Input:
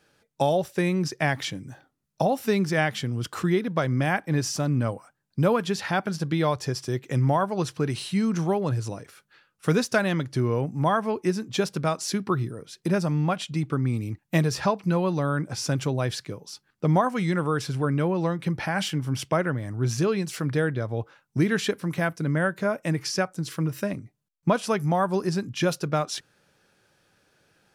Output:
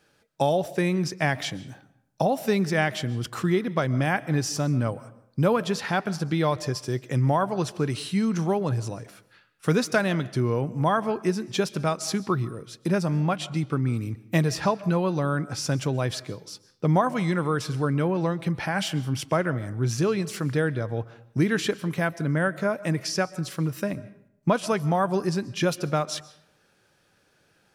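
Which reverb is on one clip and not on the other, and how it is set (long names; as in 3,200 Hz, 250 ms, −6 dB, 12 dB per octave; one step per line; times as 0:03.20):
comb and all-pass reverb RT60 0.72 s, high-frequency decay 0.65×, pre-delay 95 ms, DRR 18 dB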